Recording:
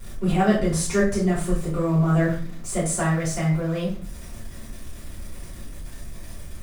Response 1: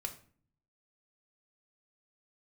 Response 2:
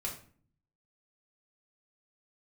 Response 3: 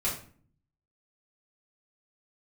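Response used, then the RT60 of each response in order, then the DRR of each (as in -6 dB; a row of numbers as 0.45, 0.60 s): 3; 0.45, 0.45, 0.45 s; 4.5, -2.5, -8.0 dB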